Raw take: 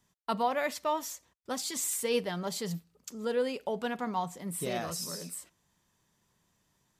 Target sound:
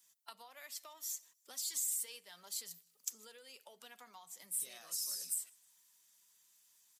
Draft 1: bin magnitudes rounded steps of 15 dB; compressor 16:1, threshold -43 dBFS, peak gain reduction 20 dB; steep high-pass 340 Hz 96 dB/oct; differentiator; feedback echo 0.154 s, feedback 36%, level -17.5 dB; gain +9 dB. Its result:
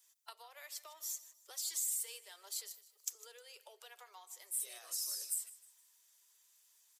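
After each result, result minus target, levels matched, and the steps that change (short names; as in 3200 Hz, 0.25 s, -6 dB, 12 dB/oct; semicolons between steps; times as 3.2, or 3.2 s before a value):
250 Hz band -12.0 dB; echo-to-direct +10.5 dB
change: steep high-pass 100 Hz 96 dB/oct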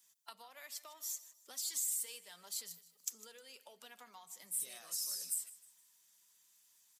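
echo-to-direct +10.5 dB
change: feedback echo 0.154 s, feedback 36%, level -28 dB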